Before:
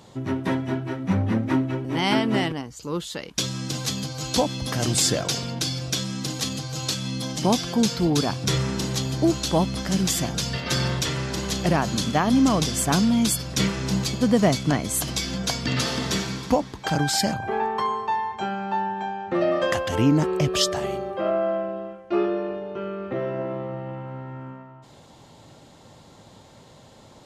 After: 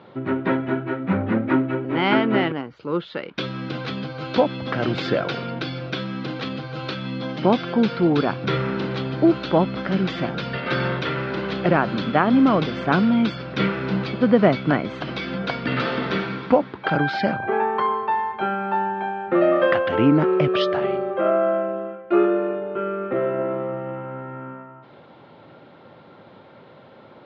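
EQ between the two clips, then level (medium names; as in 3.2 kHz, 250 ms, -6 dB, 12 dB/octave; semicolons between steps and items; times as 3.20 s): distance through air 230 m; cabinet simulation 150–4100 Hz, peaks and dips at 370 Hz +4 dB, 540 Hz +4 dB, 1.4 kHz +9 dB, 2.3 kHz +4 dB; +2.5 dB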